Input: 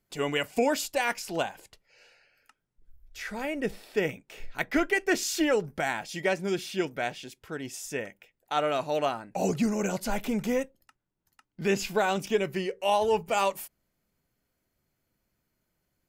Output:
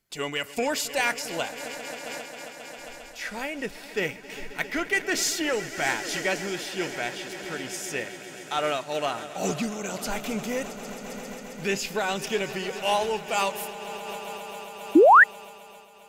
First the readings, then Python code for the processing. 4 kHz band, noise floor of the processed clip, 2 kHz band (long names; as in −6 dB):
+4.5 dB, −45 dBFS, +6.5 dB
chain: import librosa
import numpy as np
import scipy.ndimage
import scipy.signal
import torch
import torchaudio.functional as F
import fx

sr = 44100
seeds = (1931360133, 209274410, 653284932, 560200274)

p1 = fx.tilt_shelf(x, sr, db=-4.5, hz=1400.0)
p2 = fx.echo_swell(p1, sr, ms=134, loudest=5, wet_db=-17)
p3 = np.clip(p2, -10.0 ** (-24.0 / 20.0), 10.0 ** (-24.0 / 20.0))
p4 = p2 + F.gain(torch.from_numpy(p3), -4.0).numpy()
p5 = fx.high_shelf(p4, sr, hz=11000.0, db=-5.0)
p6 = fx.spec_paint(p5, sr, seeds[0], shape='rise', start_s=14.95, length_s=0.29, low_hz=280.0, high_hz=2000.0, level_db=-11.0)
p7 = fx.am_noise(p6, sr, seeds[1], hz=5.7, depth_pct=60)
y = F.gain(torch.from_numpy(p7), 1.0).numpy()